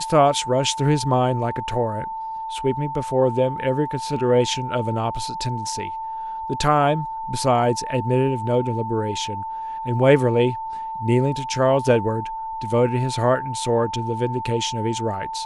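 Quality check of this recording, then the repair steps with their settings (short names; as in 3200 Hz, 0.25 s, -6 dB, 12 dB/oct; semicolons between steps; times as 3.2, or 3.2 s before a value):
tone 890 Hz -27 dBFS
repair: notch 890 Hz, Q 30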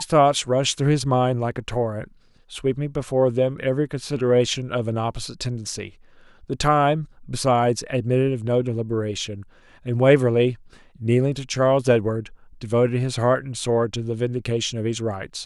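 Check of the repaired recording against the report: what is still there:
none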